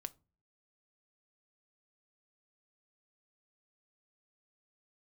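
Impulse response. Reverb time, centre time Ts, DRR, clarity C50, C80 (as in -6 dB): 0.35 s, 2 ms, 12.0 dB, 24.0 dB, 30.5 dB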